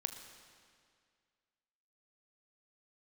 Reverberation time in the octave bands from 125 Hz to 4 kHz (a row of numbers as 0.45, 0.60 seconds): 2.1, 2.1, 2.1, 2.0, 2.0, 1.9 seconds